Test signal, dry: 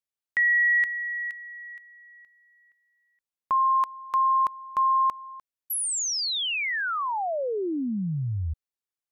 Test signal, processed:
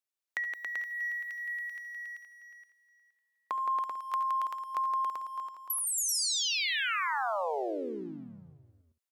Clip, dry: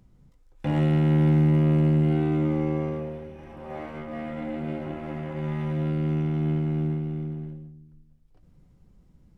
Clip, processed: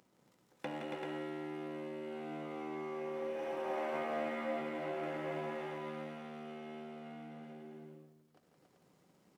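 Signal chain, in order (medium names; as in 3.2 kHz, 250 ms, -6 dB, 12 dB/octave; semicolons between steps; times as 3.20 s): compression 8:1, threshold -37 dBFS; tone controls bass -15 dB, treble +1 dB; waveshaping leveller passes 1; high-pass 180 Hz 12 dB/octave; on a send: multi-tap echo 70/81/168/278/387/446 ms -14.5/-19/-6/-4.5/-5/-17 dB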